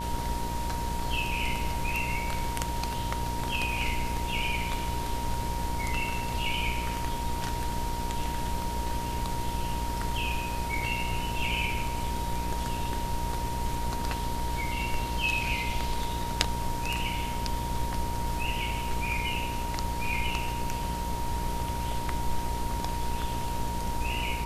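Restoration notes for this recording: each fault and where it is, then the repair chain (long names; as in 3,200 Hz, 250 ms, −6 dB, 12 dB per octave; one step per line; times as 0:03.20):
mains buzz 60 Hz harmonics 18 −35 dBFS
whistle 940 Hz −34 dBFS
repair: hum removal 60 Hz, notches 18
notch filter 940 Hz, Q 30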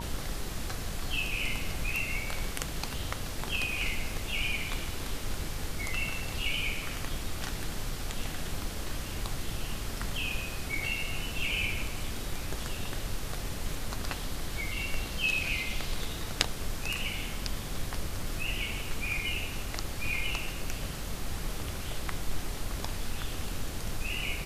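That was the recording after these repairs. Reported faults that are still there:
none of them is left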